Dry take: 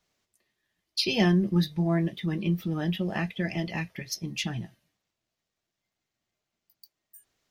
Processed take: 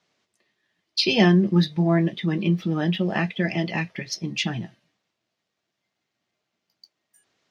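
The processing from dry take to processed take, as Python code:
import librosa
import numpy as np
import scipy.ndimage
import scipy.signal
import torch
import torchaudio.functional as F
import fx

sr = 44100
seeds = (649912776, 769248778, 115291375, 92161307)

y = fx.bandpass_edges(x, sr, low_hz=140.0, high_hz=5400.0)
y = y * librosa.db_to_amplitude(6.5)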